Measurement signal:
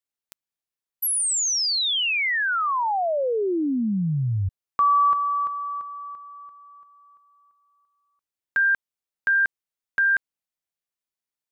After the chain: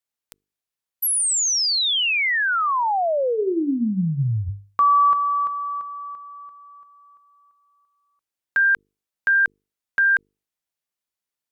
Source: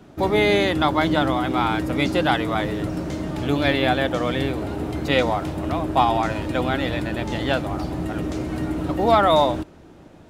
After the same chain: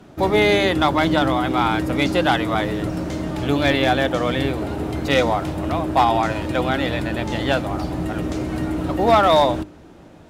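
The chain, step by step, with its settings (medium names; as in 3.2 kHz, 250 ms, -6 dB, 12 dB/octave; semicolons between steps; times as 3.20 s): one-sided clip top -11.5 dBFS; hum notches 50/100/150/200/250/300/350/400/450 Hz; trim +2.5 dB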